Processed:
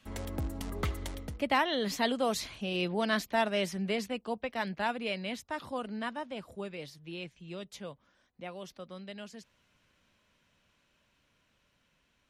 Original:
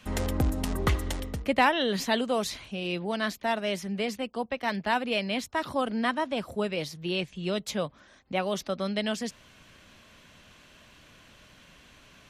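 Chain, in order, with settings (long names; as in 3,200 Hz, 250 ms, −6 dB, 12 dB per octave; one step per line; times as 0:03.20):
source passing by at 0:03.13, 16 m/s, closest 17 metres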